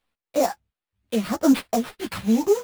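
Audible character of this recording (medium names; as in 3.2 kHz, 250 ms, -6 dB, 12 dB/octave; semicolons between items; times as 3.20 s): phasing stages 2, 0.82 Hz, lowest notch 600–4600 Hz; aliases and images of a low sample rate 6.6 kHz, jitter 20%; a shimmering, thickened sound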